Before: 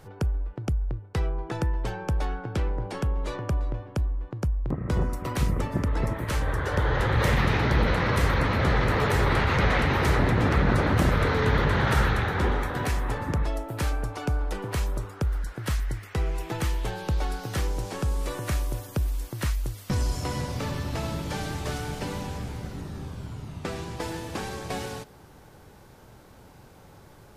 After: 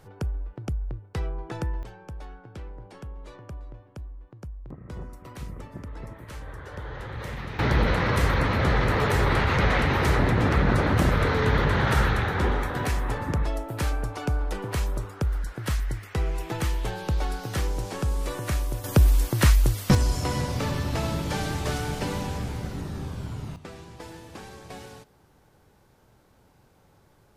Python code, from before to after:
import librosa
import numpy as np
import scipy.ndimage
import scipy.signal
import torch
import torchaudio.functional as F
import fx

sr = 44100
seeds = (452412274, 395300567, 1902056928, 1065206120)

y = fx.gain(x, sr, db=fx.steps((0.0, -3.0), (1.83, -12.5), (7.59, 0.5), (18.84, 9.5), (19.95, 3.0), (23.56, -9.0)))